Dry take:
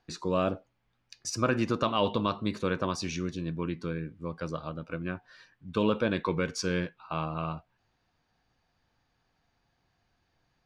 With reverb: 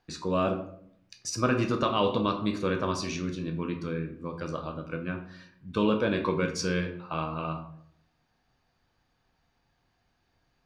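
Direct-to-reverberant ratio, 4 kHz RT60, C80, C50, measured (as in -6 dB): 4.5 dB, 0.40 s, 12.5 dB, 10.0 dB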